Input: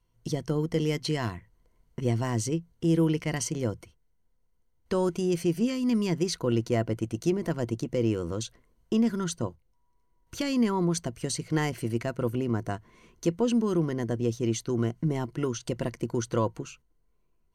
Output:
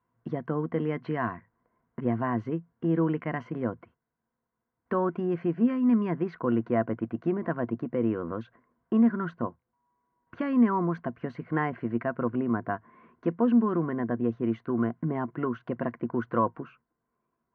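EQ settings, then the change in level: speaker cabinet 130–2100 Hz, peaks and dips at 240 Hz +7 dB, 700 Hz +6 dB, 1100 Hz +10 dB, 1600 Hz +8 dB; -2.5 dB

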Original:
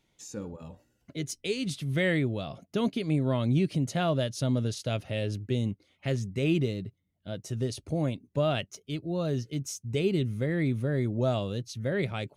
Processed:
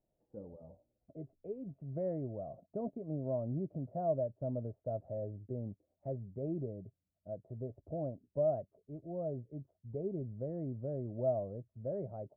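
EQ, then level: ladder low-pass 700 Hz, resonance 70%; air absorption 490 m; low shelf 61 Hz +6.5 dB; -2.0 dB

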